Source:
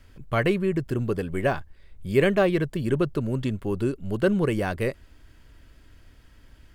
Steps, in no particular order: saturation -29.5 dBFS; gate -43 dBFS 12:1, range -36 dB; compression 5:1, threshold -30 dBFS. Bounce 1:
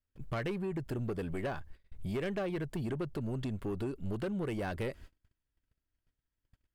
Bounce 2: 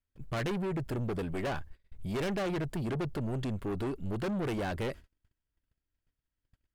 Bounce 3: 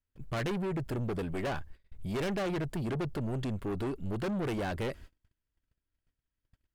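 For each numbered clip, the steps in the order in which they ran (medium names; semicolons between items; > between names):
gate > compression > saturation; saturation > gate > compression; gate > saturation > compression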